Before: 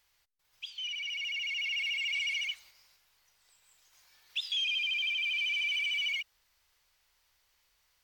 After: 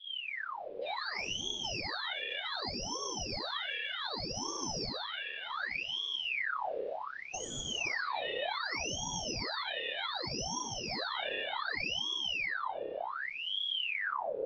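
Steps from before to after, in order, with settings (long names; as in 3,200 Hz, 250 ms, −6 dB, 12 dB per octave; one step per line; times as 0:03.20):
slices reordered back to front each 151 ms, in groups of 3
wind on the microphone 110 Hz −49 dBFS
low-pass filter 3,400 Hz 24 dB per octave
high-shelf EQ 2,600 Hz +3.5 dB
phase-vocoder stretch with locked phases 1.8×
low-shelf EQ 110 Hz +11.5 dB
spring reverb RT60 2.7 s, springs 30/49 ms, chirp 55 ms, DRR −5.5 dB
downward compressor, threshold −33 dBFS, peak gain reduction 12 dB
flutter between parallel walls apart 5.2 metres, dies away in 0.26 s
ring modulator whose carrier an LFO sweeps 1,900 Hz, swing 75%, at 0.66 Hz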